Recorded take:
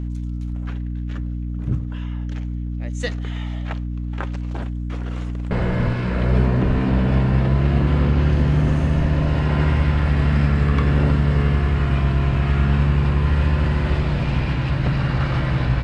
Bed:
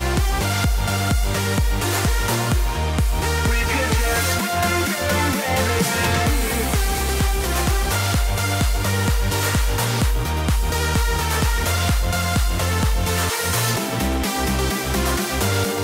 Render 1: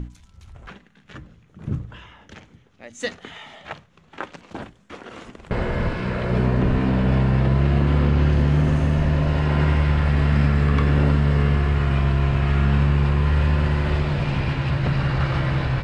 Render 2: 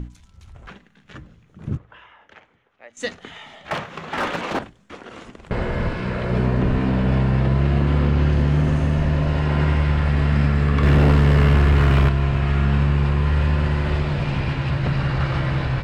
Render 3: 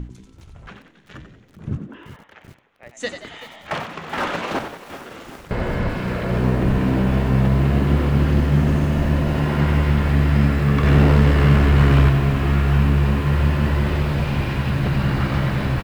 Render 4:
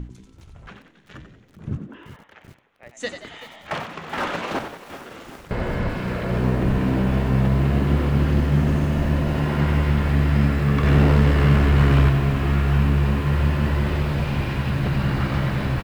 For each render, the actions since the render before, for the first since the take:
hum notches 60/120/180/240/300 Hz
1.77–2.97 s: three-band isolator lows -17 dB, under 460 Hz, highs -16 dB, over 2.9 kHz; 3.71–4.59 s: overdrive pedal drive 36 dB, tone 1.6 kHz, clips at -13.5 dBFS; 10.83–12.09 s: waveshaping leveller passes 2
frequency-shifting echo 91 ms, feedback 47%, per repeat +68 Hz, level -9 dB; bit-crushed delay 384 ms, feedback 80%, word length 6-bit, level -14 dB
trim -2 dB

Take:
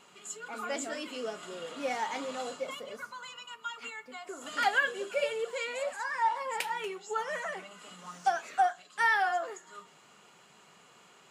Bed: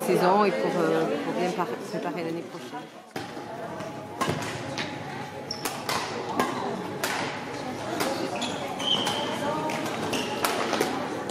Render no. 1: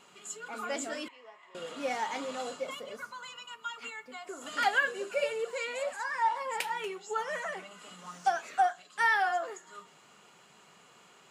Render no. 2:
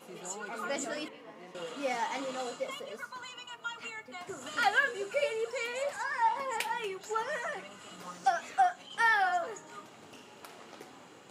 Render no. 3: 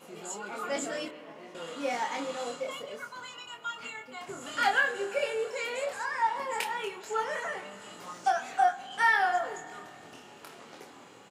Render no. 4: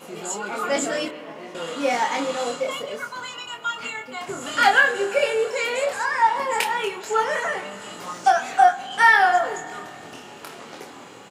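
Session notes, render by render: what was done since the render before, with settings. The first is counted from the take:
1.08–1.55 s: two resonant band-passes 1.4 kHz, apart 0.94 oct; 4.82–5.64 s: band-stop 3.3 kHz, Q 9.1
add bed -24.5 dB
doubling 25 ms -4 dB; spring tank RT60 2.5 s, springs 45 ms, chirp 60 ms, DRR 14.5 dB
trim +9.5 dB

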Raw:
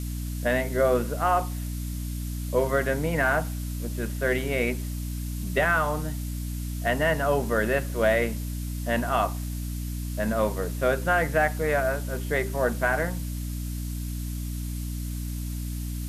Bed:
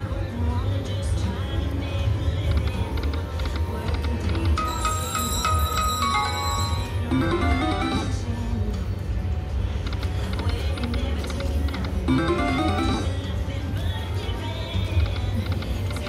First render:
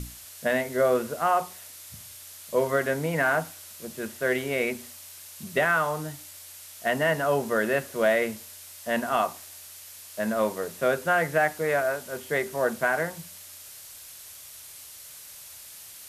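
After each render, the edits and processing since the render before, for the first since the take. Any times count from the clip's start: hum notches 60/120/180/240/300 Hz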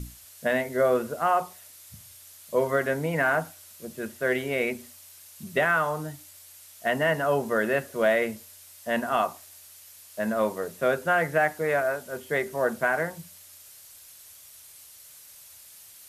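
noise reduction 6 dB, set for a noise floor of -45 dBFS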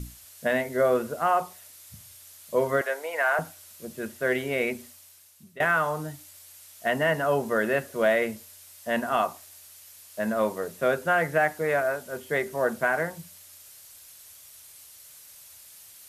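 2.81–3.39 s: high-pass 500 Hz 24 dB/octave; 4.81–5.60 s: fade out linear, to -21 dB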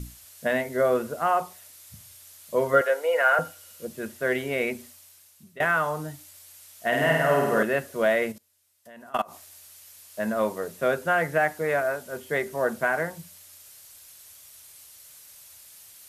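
2.73–3.87 s: small resonant body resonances 510/1400/2900 Hz, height 15 dB, ringing for 90 ms; 6.87–7.63 s: flutter echo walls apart 8.6 m, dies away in 1.2 s; 8.32–9.33 s: level held to a coarse grid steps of 23 dB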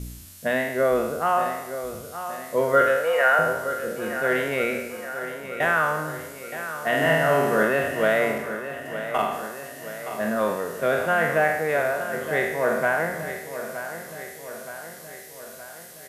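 spectral sustain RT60 0.91 s; feedback delay 920 ms, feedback 57%, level -11 dB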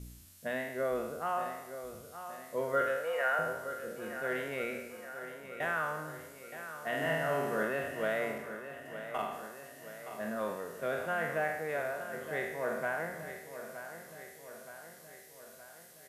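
trim -12 dB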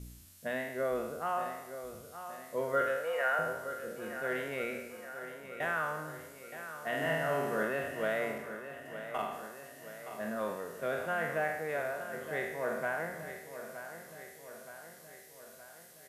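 no audible change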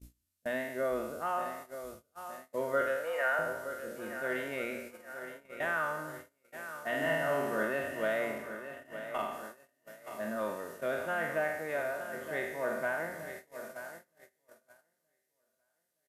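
gate -45 dBFS, range -27 dB; comb 3.3 ms, depth 32%

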